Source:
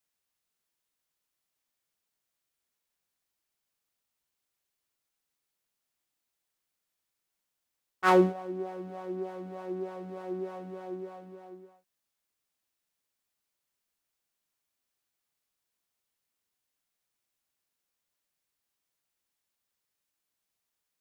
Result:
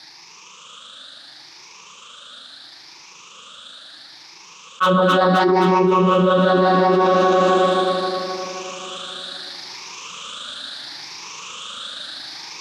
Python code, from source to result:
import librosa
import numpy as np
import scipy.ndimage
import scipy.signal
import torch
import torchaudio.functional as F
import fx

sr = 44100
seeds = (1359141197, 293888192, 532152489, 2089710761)

p1 = fx.spec_ripple(x, sr, per_octave=0.77, drift_hz=0.44, depth_db=18)
p2 = fx.peak_eq(p1, sr, hz=360.0, db=-4.0, octaves=0.69)
p3 = fx.rider(p2, sr, range_db=4, speed_s=0.5)
p4 = fx.cabinet(p3, sr, low_hz=210.0, low_slope=12, high_hz=5700.0, hz=(230.0, 410.0, 700.0, 1200.0, 2000.0, 3600.0), db=(-4, -5, -10, 5, -8, 7))
p5 = np.clip(p4, -10.0 ** (-19.0 / 20.0), 10.0 ** (-19.0 / 20.0))
p6 = fx.stretch_grains(p5, sr, factor=0.6, grain_ms=78.0)
p7 = p6 + fx.echo_alternate(p6, sr, ms=131, hz=1100.0, feedback_pct=78, wet_db=-10.5, dry=0)
p8 = fx.env_flatten(p7, sr, amount_pct=100)
y = F.gain(torch.from_numpy(p8), 8.5).numpy()